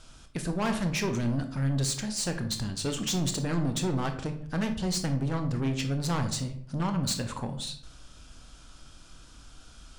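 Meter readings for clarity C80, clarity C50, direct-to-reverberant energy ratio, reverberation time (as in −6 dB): 13.5 dB, 10.0 dB, 6.5 dB, 0.60 s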